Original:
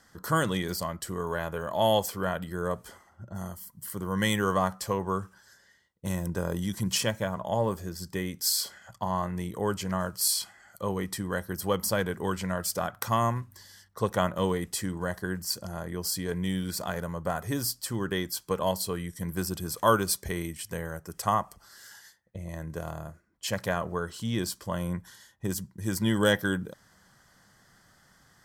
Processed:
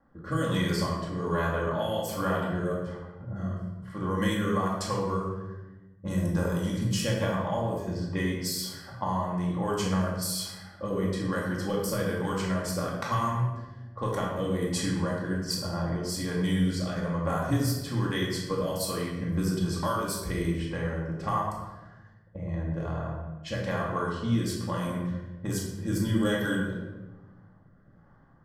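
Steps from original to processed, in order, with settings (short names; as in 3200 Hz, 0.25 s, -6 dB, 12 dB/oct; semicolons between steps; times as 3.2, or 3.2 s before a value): low-pass opened by the level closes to 820 Hz, open at -25.5 dBFS; bell 1100 Hz +4.5 dB 0.48 oct; compressor, threshold -27 dBFS, peak gain reduction 12 dB; rotary speaker horn 1.2 Hz; shoebox room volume 590 m³, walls mixed, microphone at 2.3 m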